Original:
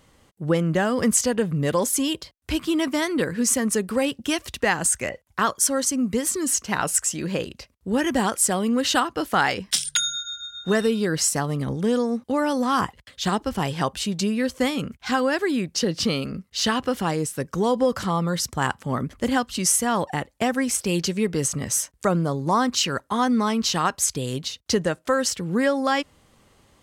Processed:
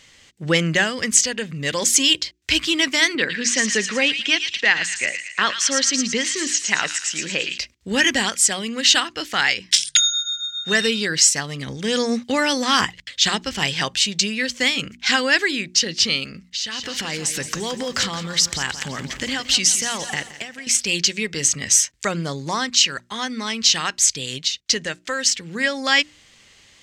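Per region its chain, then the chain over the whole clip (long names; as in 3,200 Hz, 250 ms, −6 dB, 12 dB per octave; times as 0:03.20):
0:03.15–0:07.58: band-pass filter 170–4,100 Hz + delay with a high-pass on its return 113 ms, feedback 50%, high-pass 2,400 Hz, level −4 dB
0:16.46–0:20.67: downward compressor 5 to 1, threshold −35 dBFS + feedback echo at a low word length 171 ms, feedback 55%, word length 10 bits, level −11.5 dB
whole clip: flat-topped bell 3,600 Hz +15.5 dB 2.5 octaves; mains-hum notches 60/120/180/240/300/360 Hz; automatic gain control; level −2 dB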